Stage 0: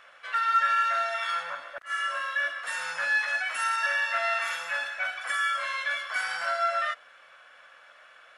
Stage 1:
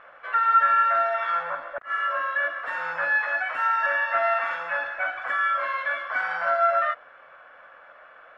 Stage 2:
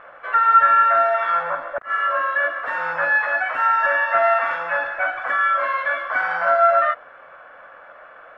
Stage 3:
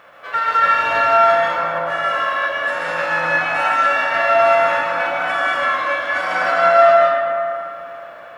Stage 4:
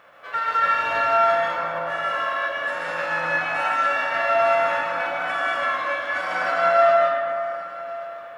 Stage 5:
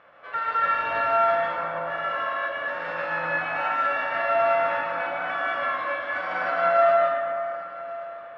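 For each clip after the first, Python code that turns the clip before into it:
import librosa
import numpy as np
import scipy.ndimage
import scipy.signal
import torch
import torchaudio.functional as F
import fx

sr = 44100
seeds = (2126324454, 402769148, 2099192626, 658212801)

y1 = scipy.signal.sosfilt(scipy.signal.butter(2, 1300.0, 'lowpass', fs=sr, output='sos'), x)
y1 = F.gain(torch.from_numpy(y1), 8.5).numpy()
y2 = fx.high_shelf(y1, sr, hz=2000.0, db=-8.5)
y2 = F.gain(torch.from_numpy(y2), 8.0).numpy()
y3 = fx.envelope_flatten(y2, sr, power=0.6)
y3 = scipy.signal.sosfilt(scipy.signal.butter(2, 77.0, 'highpass', fs=sr, output='sos'), y3)
y3 = fx.rev_freeverb(y3, sr, rt60_s=2.9, hf_ratio=0.35, predelay_ms=95, drr_db=-5.0)
y3 = F.gain(torch.from_numpy(y3), -3.0).numpy()
y4 = y3 + 10.0 ** (-19.5 / 20.0) * np.pad(y3, (int(1128 * sr / 1000.0), 0))[:len(y3)]
y4 = F.gain(torch.from_numpy(y4), -5.5).numpy()
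y5 = fx.air_absorb(y4, sr, metres=230.0)
y5 = F.gain(torch.from_numpy(y5), -1.5).numpy()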